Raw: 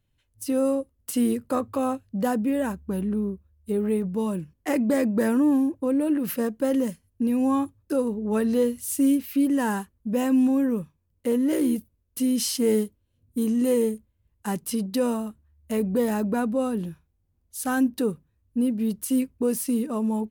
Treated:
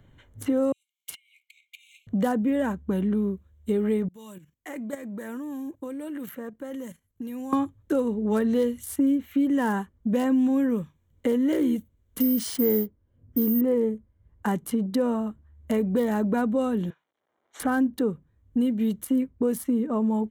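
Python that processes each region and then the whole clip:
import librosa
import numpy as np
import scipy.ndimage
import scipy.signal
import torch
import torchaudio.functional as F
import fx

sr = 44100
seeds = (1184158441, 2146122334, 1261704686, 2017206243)

y = fx.chain(x, sr, fx.high_shelf(hz=3800.0, db=-8.0),
    fx.over_compress(threshold_db=-32.0, ratio=-1.0),
    fx.brickwall_highpass(low_hz=2100.0), at=(0.72, 2.07))
y = fx.chain(y, sr, fx.pre_emphasis(coefficient=0.9),
    fx.level_steps(step_db=12), at=(4.08, 7.53))
y = fx.chain(y, sr, fx.lowpass(hz=10000.0, slope=24),
    fx.resample_bad(factor=3, down='none', up='zero_stuff'), at=(12.2, 13.61))
y = fx.chain(y, sr, fx.law_mismatch(coded='A'),
    fx.bandpass_edges(low_hz=520.0, high_hz=3800.0), at=(16.9, 17.6))
y = fx.wiener(y, sr, points=9)
y = fx.notch(y, sr, hz=2600.0, q=5.7)
y = fx.band_squash(y, sr, depth_pct=70)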